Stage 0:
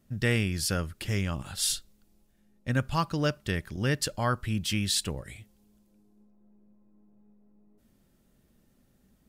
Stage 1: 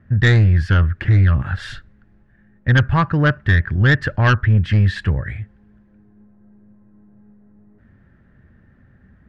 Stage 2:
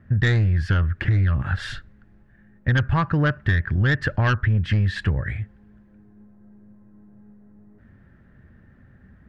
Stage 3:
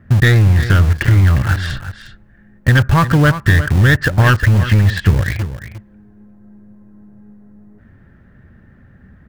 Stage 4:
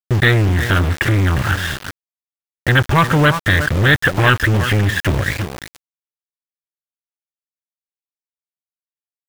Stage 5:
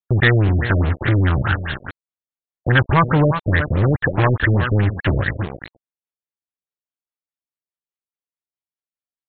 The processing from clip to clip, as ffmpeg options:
-filter_complex "[0:a]lowpass=f=1.7k:t=q:w=6.1,equalizer=f=91:w=0.89:g=15,asplit=2[a][b];[b]aeval=exprs='0.398*sin(PI/2*2.24*val(0)/0.398)':c=same,volume=-8.5dB[c];[a][c]amix=inputs=2:normalize=0"
-af "acompressor=threshold=-17dB:ratio=6"
-filter_complex "[0:a]asplit=2[a][b];[b]acrusher=bits=3:mix=0:aa=0.000001,volume=-8.5dB[c];[a][c]amix=inputs=2:normalize=0,aecho=1:1:356:0.251,volume=6dB"
-af "aresample=8000,aeval=exprs='0.891*sin(PI/2*2*val(0)/0.891)':c=same,aresample=44100,lowshelf=f=160:g=-9.5,aeval=exprs='val(0)*gte(abs(val(0)),0.15)':c=same,volume=-5dB"
-af "afftfilt=real='re*lt(b*sr/1024,650*pow(4400/650,0.5+0.5*sin(2*PI*4.8*pts/sr)))':imag='im*lt(b*sr/1024,650*pow(4400/650,0.5+0.5*sin(2*PI*4.8*pts/sr)))':win_size=1024:overlap=0.75,volume=-1dB"

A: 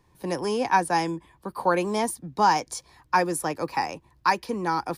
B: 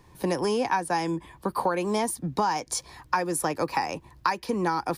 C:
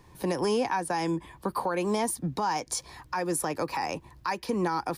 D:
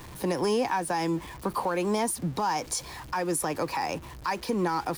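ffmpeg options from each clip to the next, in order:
-af "acompressor=threshold=-31dB:ratio=6,volume=8dB"
-af "alimiter=limit=-19dB:level=0:latency=1:release=78"
-af "aeval=exprs='val(0)+0.5*0.00944*sgn(val(0))':c=same"

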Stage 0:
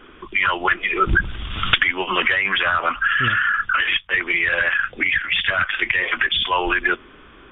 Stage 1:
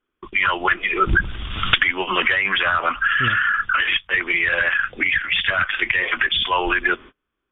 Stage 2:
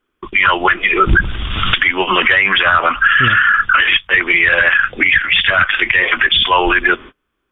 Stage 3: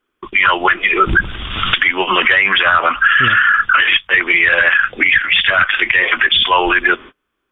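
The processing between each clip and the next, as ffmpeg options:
-af "agate=range=-34dB:threshold=-37dB:ratio=16:detection=peak"
-af "alimiter=level_in=9dB:limit=-1dB:release=50:level=0:latency=1,volume=-1dB"
-af "lowshelf=f=170:g=-7"

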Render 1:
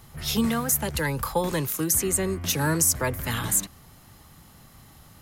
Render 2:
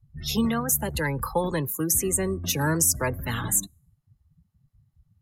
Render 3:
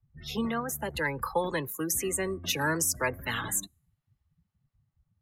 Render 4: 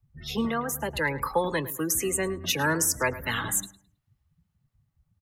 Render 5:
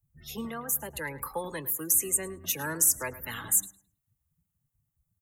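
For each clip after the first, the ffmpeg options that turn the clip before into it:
-af "afftdn=nr=35:nf=-35,bandreject=f=3.2k:w=25"
-filter_complex "[0:a]bass=f=250:g=-8,treble=f=4k:g=-13,acrossover=split=180|1900[a][b][c];[c]dynaudnorm=f=220:g=9:m=8dB[d];[a][b][d]amix=inputs=3:normalize=0,volume=-2.5dB"
-filter_complex "[0:a]asplit=2[a][b];[b]adelay=107,lowpass=f=3.5k:p=1,volume=-15.5dB,asplit=2[c][d];[d]adelay=107,lowpass=f=3.5k:p=1,volume=0.29,asplit=2[e][f];[f]adelay=107,lowpass=f=3.5k:p=1,volume=0.29[g];[a][c][e][g]amix=inputs=4:normalize=0,volume=3dB"
-af "aexciter=amount=4.4:drive=5.7:freq=6.6k,volume=-9dB"

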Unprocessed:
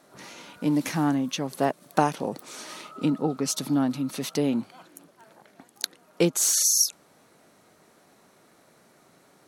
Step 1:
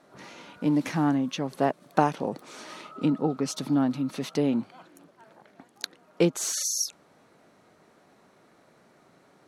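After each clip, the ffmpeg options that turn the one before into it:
-af "aemphasis=mode=reproduction:type=50kf"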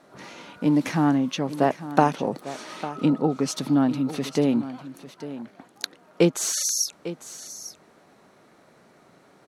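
-af "aecho=1:1:850:0.2,volume=3.5dB"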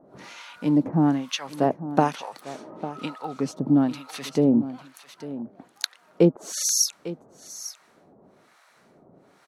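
-filter_complex "[0:a]acrossover=split=840[a][b];[a]aeval=exprs='val(0)*(1-1/2+1/2*cos(2*PI*1.1*n/s))':c=same[c];[b]aeval=exprs='val(0)*(1-1/2-1/2*cos(2*PI*1.1*n/s))':c=same[d];[c][d]amix=inputs=2:normalize=0,volume=3.5dB"

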